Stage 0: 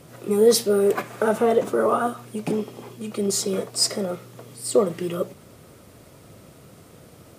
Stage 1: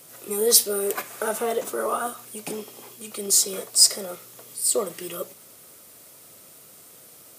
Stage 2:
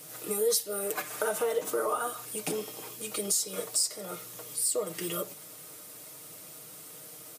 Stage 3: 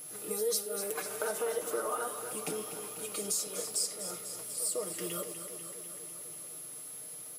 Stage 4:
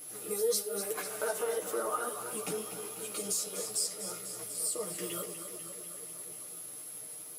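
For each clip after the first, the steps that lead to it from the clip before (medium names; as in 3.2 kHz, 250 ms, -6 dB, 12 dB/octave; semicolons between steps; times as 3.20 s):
RIAA curve recording; trim -4 dB
compression 4:1, threshold -29 dBFS, peak gain reduction 15.5 dB; comb 6.5 ms, depth 67%
whistle 11 kHz -40 dBFS; pre-echo 156 ms -13.5 dB; modulated delay 247 ms, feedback 70%, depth 54 cents, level -10 dB; trim -5 dB
chorus voices 6, 0.94 Hz, delay 13 ms, depth 4.1 ms; trim +3 dB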